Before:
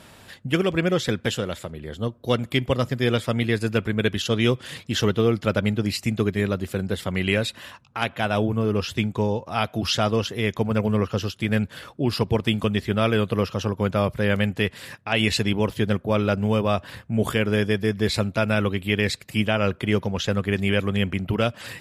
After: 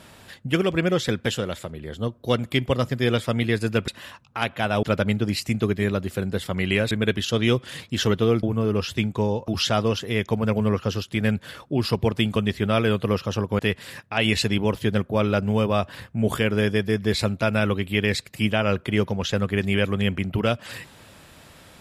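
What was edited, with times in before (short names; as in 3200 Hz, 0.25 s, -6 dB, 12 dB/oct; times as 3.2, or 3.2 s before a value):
3.88–5.4 swap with 7.48–8.43
9.48–9.76 cut
13.87–14.54 cut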